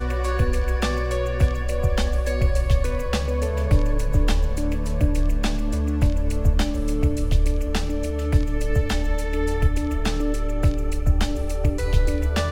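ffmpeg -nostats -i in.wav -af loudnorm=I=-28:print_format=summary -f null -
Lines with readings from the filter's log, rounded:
Input Integrated:    -23.8 LUFS
Input True Peak:      -5.3 dBTP
Input LRA:             0.8 LU
Input Threshold:     -33.8 LUFS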